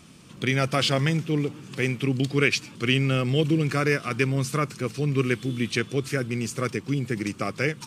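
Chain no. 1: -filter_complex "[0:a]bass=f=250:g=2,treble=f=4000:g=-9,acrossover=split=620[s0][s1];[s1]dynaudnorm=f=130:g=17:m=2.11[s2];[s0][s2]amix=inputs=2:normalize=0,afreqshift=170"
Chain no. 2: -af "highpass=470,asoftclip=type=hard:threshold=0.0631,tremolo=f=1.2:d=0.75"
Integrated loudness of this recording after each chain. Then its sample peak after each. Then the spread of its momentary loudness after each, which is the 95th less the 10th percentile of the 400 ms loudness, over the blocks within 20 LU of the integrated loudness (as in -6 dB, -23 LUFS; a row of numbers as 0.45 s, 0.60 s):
-22.5 LUFS, -34.5 LUFS; -3.5 dBFS, -24.0 dBFS; 7 LU, 13 LU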